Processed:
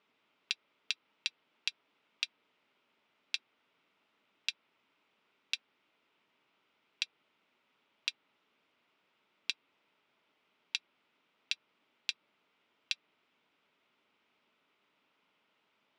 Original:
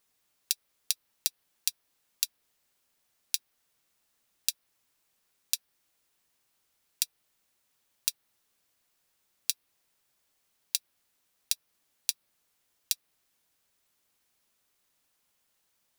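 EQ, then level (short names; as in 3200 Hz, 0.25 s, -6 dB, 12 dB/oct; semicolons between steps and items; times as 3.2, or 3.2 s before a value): air absorption 470 m; speaker cabinet 320–6900 Hz, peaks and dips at 350 Hz -4 dB, 520 Hz -8 dB, 750 Hz -9 dB, 1100 Hz -5 dB, 1700 Hz -10 dB, 4300 Hz -5 dB; +15.5 dB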